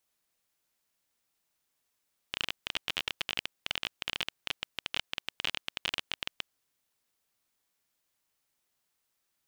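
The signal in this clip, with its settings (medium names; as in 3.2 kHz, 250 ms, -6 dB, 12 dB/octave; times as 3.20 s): random clicks 21 per s -13.5 dBFS 4.08 s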